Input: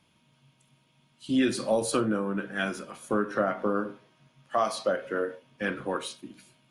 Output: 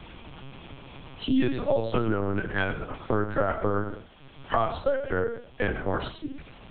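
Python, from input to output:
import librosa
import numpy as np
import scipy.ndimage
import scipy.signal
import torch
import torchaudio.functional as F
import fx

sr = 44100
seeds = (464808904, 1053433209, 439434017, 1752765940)

p1 = x + fx.echo_single(x, sr, ms=105, db=-11.5, dry=0)
p2 = fx.lpc_vocoder(p1, sr, seeds[0], excitation='pitch_kept', order=8)
p3 = fx.band_squash(p2, sr, depth_pct=70)
y = p3 * 10.0 ** (2.0 / 20.0)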